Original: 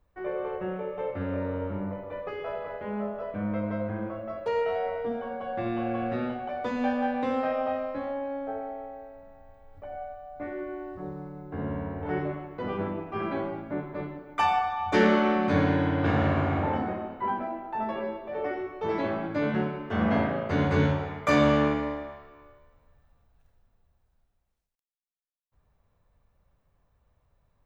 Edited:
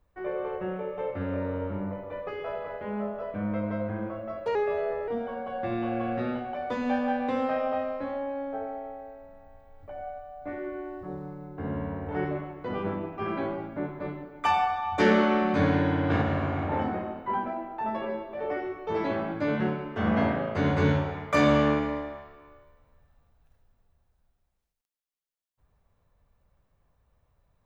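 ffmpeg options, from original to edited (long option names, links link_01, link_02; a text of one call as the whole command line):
ffmpeg -i in.wav -filter_complex "[0:a]asplit=5[link_01][link_02][link_03][link_04][link_05];[link_01]atrim=end=4.554[link_06];[link_02]atrim=start=4.55:end=5.02,asetpts=PTS-STARTPTS,asetrate=39249,aresample=44100[link_07];[link_03]atrim=start=5.016:end=16.162[link_08];[link_04]atrim=start=16.158:end=16.662,asetpts=PTS-STARTPTS,volume=-3dB[link_09];[link_05]atrim=start=16.658[link_10];[link_06][link_07]acrossfade=duration=0.004:curve1=hsin:curve2=hsin[link_11];[link_11][link_08]acrossfade=duration=0.004:curve1=hsin:curve2=hsin[link_12];[link_12][link_09]acrossfade=duration=0.004:curve1=hsin:curve2=hsin[link_13];[link_13][link_10]acrossfade=duration=0.004:curve1=hsin:curve2=hsin" out.wav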